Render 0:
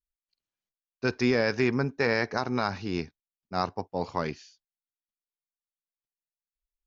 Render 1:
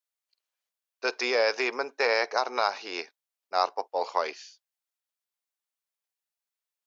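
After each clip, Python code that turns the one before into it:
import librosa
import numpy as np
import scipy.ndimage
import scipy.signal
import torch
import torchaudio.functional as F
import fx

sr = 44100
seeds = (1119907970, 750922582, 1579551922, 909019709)

y = fx.dynamic_eq(x, sr, hz=1700.0, q=2.6, threshold_db=-42.0, ratio=4.0, max_db=-6)
y = scipy.signal.sosfilt(scipy.signal.butter(4, 500.0, 'highpass', fs=sr, output='sos'), y)
y = F.gain(torch.from_numpy(y), 5.0).numpy()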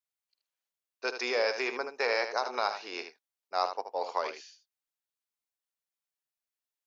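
y = x + 10.0 ** (-9.0 / 20.0) * np.pad(x, (int(77 * sr / 1000.0), 0))[:len(x)]
y = F.gain(torch.from_numpy(y), -4.5).numpy()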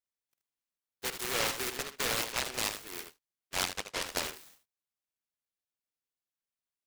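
y = fx.noise_mod_delay(x, sr, seeds[0], noise_hz=1800.0, depth_ms=0.42)
y = F.gain(torch.from_numpy(y), -3.0).numpy()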